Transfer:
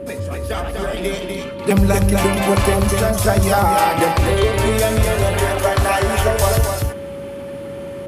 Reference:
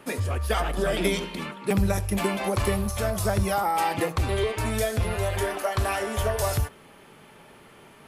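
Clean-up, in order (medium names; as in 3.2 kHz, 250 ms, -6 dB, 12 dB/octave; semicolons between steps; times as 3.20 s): band-stop 560 Hz, Q 30; noise print and reduce 21 dB; inverse comb 247 ms -4.5 dB; trim 0 dB, from 1.59 s -8.5 dB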